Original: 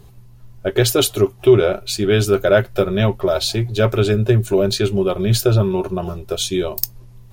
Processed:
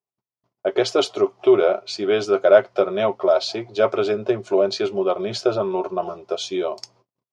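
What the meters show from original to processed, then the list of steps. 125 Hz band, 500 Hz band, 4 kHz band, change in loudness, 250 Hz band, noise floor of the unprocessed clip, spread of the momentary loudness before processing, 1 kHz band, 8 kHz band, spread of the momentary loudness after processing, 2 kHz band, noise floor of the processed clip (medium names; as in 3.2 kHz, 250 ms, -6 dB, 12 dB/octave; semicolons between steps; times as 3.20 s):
-21.0 dB, -1.0 dB, -6.0 dB, -3.0 dB, -6.0 dB, -44 dBFS, 8 LU, +1.5 dB, under -10 dB, 11 LU, -4.5 dB, under -85 dBFS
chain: gate -35 dBFS, range -41 dB; cabinet simulation 400–5100 Hz, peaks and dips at 680 Hz +5 dB, 1.1 kHz +3 dB, 1.7 kHz -8 dB, 2.7 kHz -6 dB, 3.8 kHz -8 dB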